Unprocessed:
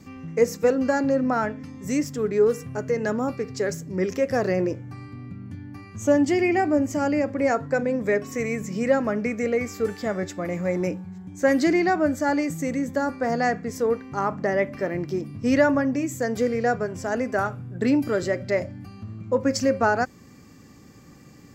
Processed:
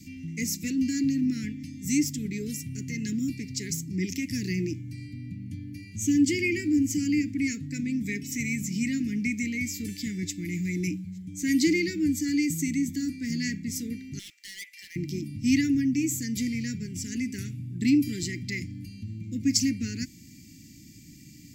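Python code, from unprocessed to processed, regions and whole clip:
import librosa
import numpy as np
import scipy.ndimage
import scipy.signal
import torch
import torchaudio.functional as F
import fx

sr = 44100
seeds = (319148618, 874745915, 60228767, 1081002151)

y = fx.chain(x, sr, fx.bessel_highpass(hz=1200.0, order=8),
    fx.clip_hard(threshold_db=-36.0), at=(14.19, 14.96))
y = scipy.signal.sosfilt(scipy.signal.cheby1(4, 1.0, [320.0, 2100.0], 'bandstop', fs=sr, output='sos'), y)
y = fx.high_shelf(y, sr, hz=5000.0, db=9.5)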